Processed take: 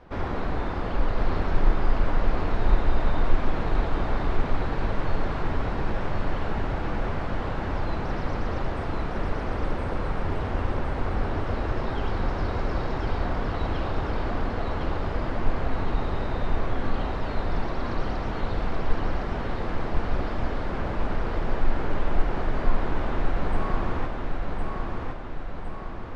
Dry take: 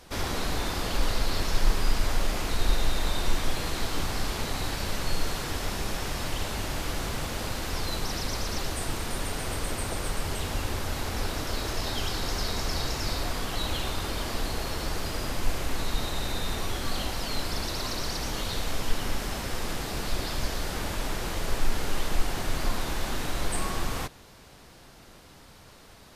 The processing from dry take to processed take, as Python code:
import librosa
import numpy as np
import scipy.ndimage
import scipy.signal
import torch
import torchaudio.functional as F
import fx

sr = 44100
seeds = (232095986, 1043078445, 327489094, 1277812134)

p1 = scipy.signal.sosfilt(scipy.signal.butter(2, 1500.0, 'lowpass', fs=sr, output='sos'), x)
p2 = p1 + fx.echo_feedback(p1, sr, ms=1060, feedback_pct=55, wet_db=-3.5, dry=0)
y = F.gain(torch.from_numpy(p2), 2.5).numpy()